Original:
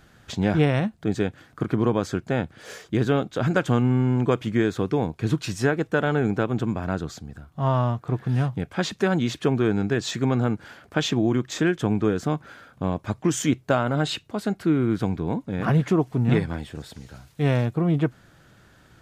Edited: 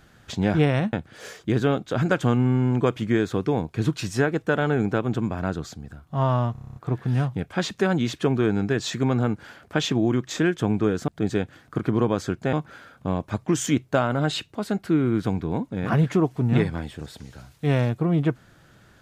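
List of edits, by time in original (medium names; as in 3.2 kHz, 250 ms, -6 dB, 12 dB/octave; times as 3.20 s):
0.93–2.38 s: move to 12.29 s
7.97 s: stutter 0.03 s, 9 plays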